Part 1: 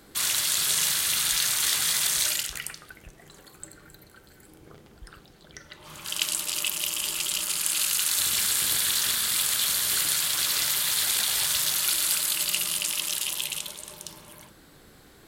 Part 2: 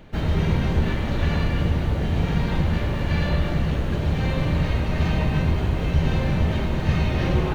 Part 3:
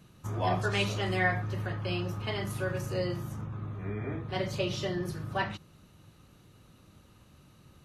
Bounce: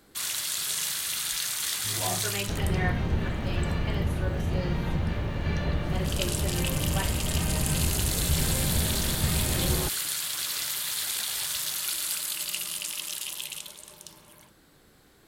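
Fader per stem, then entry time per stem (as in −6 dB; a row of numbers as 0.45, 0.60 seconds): −5.5, −6.5, −4.0 decibels; 0.00, 2.35, 1.60 seconds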